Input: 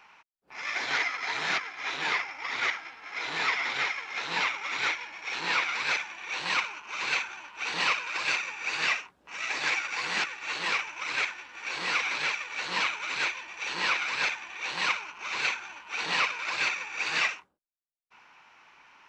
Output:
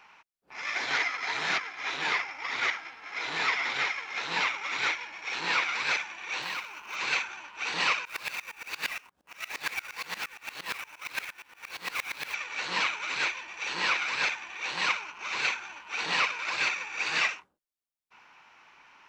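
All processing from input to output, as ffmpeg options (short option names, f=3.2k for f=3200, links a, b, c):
-filter_complex "[0:a]asettb=1/sr,asplit=3[a][b][c];[a]atrim=end=6.424[d];[b]atrim=start=6.42:end=6.96,asetpts=PTS-STARTPTS,afade=t=in:d=0.004:c=qsin,afade=t=out:st=0.536:d=0.004:c=qsin,acrossover=split=790|3100[e][f][g];[e]acompressor=threshold=-49dB:ratio=4[h];[f]acompressor=threshold=-36dB:ratio=4[i];[g]acompressor=threshold=-43dB:ratio=4[j];[h][i][j]amix=inputs=3:normalize=0,acrusher=bits=5:mode=log:mix=0:aa=0.000001[k];[c]atrim=start=6.956[l];[d][k]acrossfade=d=0.004:c1=hsin:c2=qsin[m];[m][l]acrossfade=d=0.004:c1=qsin:c2=hsin,asettb=1/sr,asplit=3[n][o][p];[n]atrim=end=8.054[q];[o]atrim=start=8.05:end=12.34,asetpts=PTS-STARTPTS,afade=t=in:d=0.004:c=qsin,afade=t=out:st=4.286:d=0.004:c=qsin,equalizer=f=360:w=6.5:g=-4.5,acrusher=bits=2:mode=log:mix=0:aa=0.000001,aeval=exprs='val(0)*pow(10,-22*if(lt(mod(-8.6*n/s,1),2*abs(-8.6)/1000),1-mod(-8.6*n/s,1)/(2*abs(-8.6)/1000),(mod(-8.6*n/s,1)-2*abs(-8.6)/1000)/(1-2*abs(-8.6)/1000))/20)':c=same[r];[p]atrim=start=12.336[s];[q][r]acrossfade=d=0.004:c1=hsin:c2=qsin[t];[t][s]acrossfade=d=0.004:c1=qsin:c2=hsin"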